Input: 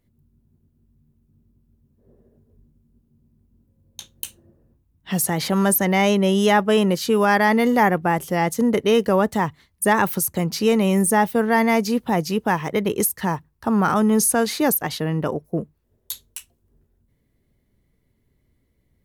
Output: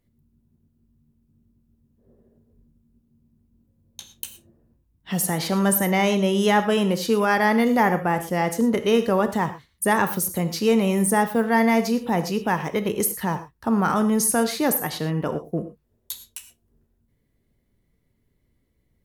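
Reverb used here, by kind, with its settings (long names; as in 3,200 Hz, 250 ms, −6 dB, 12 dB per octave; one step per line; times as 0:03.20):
reverb whose tail is shaped and stops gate 140 ms flat, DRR 9 dB
level −2.5 dB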